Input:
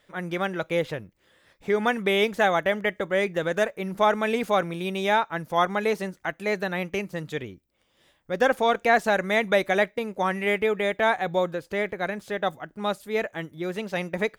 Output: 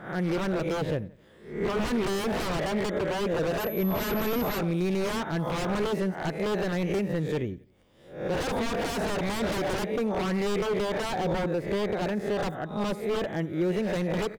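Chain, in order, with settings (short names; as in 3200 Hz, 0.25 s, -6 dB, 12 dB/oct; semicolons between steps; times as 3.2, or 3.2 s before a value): spectral swells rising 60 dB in 0.46 s; on a send: feedback echo 88 ms, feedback 38%, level -22.5 dB; on the sum: wavefolder -24 dBFS; in parallel at -0.5 dB: compressor, threshold -39 dBFS, peak gain reduction 11.5 dB; 3.59–4.57 on the sum: whine 12000 Hz -29 dBFS; tilt shelf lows +7 dB, about 830 Hz; gain -2.5 dB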